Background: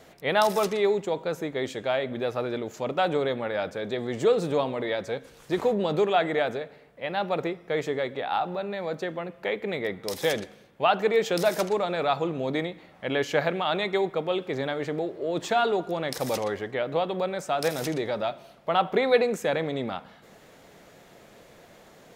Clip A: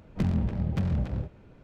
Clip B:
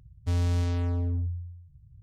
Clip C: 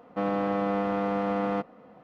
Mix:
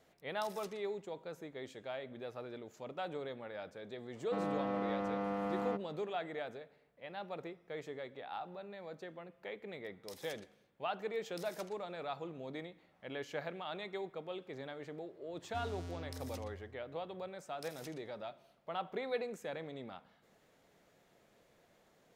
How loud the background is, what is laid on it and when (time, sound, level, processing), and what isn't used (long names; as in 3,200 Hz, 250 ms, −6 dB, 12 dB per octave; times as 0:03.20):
background −16.5 dB
0:04.15: mix in C −9.5 dB
0:15.27: mix in B −14 dB + high-pass filter 120 Hz
not used: A